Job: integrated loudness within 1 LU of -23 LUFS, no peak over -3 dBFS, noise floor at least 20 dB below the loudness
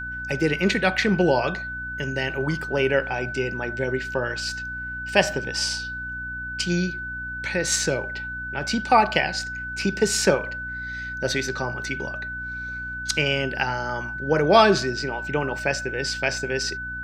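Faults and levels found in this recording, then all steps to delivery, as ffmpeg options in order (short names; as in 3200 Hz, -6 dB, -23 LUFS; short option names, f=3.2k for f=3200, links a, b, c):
hum 60 Hz; harmonics up to 300 Hz; hum level -37 dBFS; steady tone 1500 Hz; tone level -30 dBFS; loudness -24.0 LUFS; peak -2.0 dBFS; loudness target -23.0 LUFS
-> -af "bandreject=f=60:t=h:w=4,bandreject=f=120:t=h:w=4,bandreject=f=180:t=h:w=4,bandreject=f=240:t=h:w=4,bandreject=f=300:t=h:w=4"
-af "bandreject=f=1.5k:w=30"
-af "volume=1dB,alimiter=limit=-3dB:level=0:latency=1"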